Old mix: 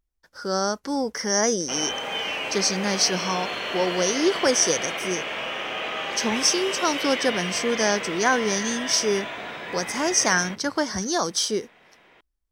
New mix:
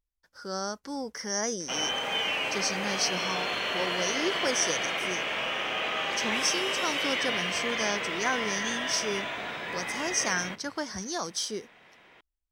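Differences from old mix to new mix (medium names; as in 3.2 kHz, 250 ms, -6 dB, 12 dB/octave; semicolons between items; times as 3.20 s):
speech -7.5 dB; master: add peaking EQ 430 Hz -2.5 dB 2.2 oct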